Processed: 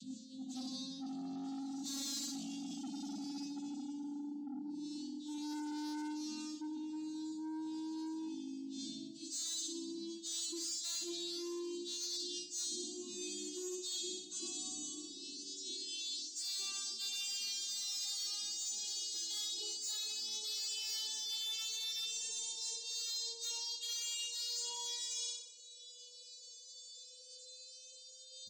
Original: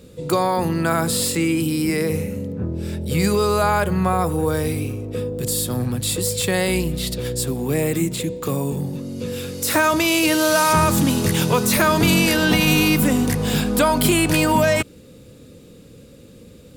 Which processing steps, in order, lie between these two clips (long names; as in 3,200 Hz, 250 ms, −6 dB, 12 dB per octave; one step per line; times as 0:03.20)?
vocoder with a gliding carrier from C4, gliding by +12 semitones
time stretch by phase vocoder 1.7×
inverse Chebyshev band-stop filter 380–2,200 Hz, stop band 40 dB
on a send: flutter between parallel walls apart 10.8 metres, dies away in 0.64 s
on the sum: dynamic equaliser 370 Hz, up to +5 dB, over −51 dBFS, Q 1.5
double-tracking delay 23 ms −6 dB
soft clipping −35.5 dBFS, distortion −10 dB
reversed playback
downward compressor 12 to 1, threshold −54 dBFS, peak gain reduction 17 dB
reversed playback
low-shelf EQ 230 Hz −9 dB
level +15.5 dB